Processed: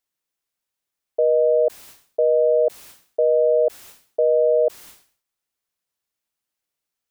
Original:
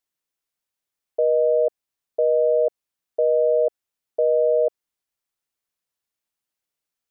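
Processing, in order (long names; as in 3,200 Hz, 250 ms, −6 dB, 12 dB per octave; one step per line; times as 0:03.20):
level that may fall only so fast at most 120 dB per second
level +1.5 dB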